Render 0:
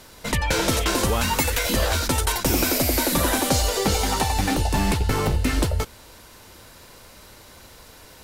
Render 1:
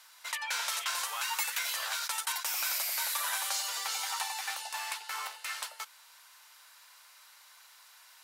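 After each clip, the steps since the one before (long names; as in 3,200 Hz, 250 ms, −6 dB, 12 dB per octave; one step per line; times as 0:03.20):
inverse Chebyshev high-pass filter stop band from 210 Hz, stop band 70 dB
level −8 dB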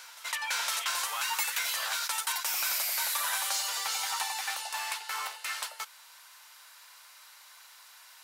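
in parallel at −6.5 dB: soft clipping −34 dBFS, distortion −10 dB
on the sum: backwards echo 510 ms −19.5 dB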